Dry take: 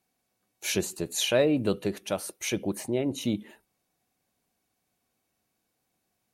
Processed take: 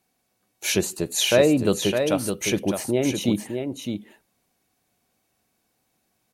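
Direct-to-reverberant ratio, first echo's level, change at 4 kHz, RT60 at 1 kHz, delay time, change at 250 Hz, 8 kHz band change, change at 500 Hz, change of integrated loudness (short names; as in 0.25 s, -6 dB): none, -6.5 dB, +6.5 dB, none, 0.61 s, +6.5 dB, +6.5 dB, +6.5 dB, +5.5 dB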